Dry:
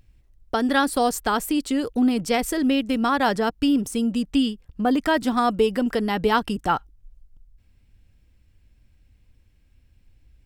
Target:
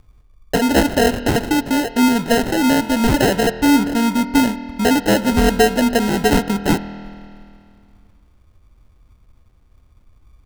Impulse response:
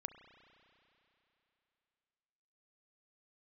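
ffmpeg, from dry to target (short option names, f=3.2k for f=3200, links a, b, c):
-filter_complex "[0:a]acrusher=samples=38:mix=1:aa=0.000001,asplit=2[a][b];[1:a]atrim=start_sample=2205,asetrate=57330,aresample=44100[c];[b][c]afir=irnorm=-1:irlink=0,volume=8.5dB[d];[a][d]amix=inputs=2:normalize=0,volume=-1.5dB"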